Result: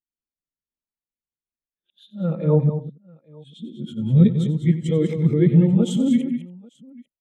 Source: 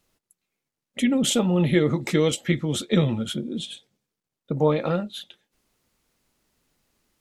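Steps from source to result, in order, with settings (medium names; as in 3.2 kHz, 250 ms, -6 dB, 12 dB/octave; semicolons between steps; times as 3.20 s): reverse the whole clip; dynamic bell 140 Hz, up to +7 dB, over -35 dBFS, Q 1; multi-tap echo 93/175/200/282/842 ms -10.5/-16/-6.5/-17/-16.5 dB; spectral contrast expander 1.5:1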